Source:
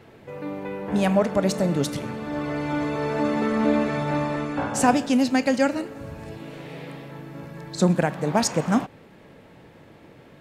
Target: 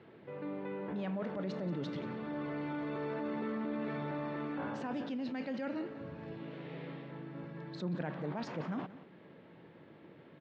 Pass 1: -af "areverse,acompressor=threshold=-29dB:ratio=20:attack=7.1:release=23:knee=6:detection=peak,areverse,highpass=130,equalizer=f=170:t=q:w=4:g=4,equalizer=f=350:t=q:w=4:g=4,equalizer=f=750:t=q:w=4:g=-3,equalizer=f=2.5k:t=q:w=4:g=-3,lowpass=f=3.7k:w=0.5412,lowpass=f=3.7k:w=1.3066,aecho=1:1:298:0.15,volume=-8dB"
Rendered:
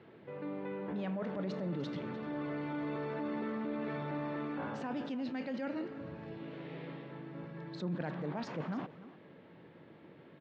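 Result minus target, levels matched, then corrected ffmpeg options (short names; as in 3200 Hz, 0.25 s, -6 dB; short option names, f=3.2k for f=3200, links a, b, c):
echo 0.117 s late
-af "areverse,acompressor=threshold=-29dB:ratio=20:attack=7.1:release=23:knee=6:detection=peak,areverse,highpass=130,equalizer=f=170:t=q:w=4:g=4,equalizer=f=350:t=q:w=4:g=4,equalizer=f=750:t=q:w=4:g=-3,equalizer=f=2.5k:t=q:w=4:g=-3,lowpass=f=3.7k:w=0.5412,lowpass=f=3.7k:w=1.3066,aecho=1:1:181:0.15,volume=-8dB"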